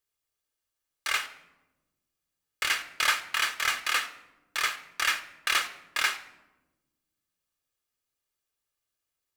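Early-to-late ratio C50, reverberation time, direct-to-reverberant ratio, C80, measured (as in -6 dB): 13.5 dB, 1.1 s, 8.0 dB, 15.5 dB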